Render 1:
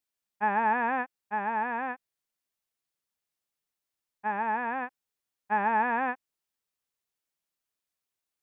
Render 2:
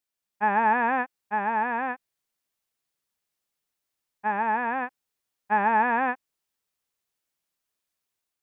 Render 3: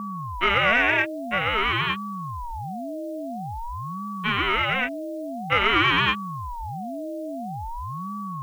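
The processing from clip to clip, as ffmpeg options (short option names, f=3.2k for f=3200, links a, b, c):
-af "dynaudnorm=f=140:g=5:m=4dB"
-af "aexciter=amount=10.9:drive=7.5:freq=2k,aeval=exprs='val(0)+0.0501*sin(2*PI*470*n/s)':c=same,aeval=exprs='val(0)*sin(2*PI*410*n/s+410*0.65/0.49*sin(2*PI*0.49*n/s))':c=same"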